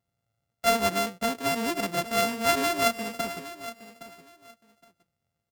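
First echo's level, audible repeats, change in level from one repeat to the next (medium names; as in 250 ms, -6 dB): -14.5 dB, 2, -13.5 dB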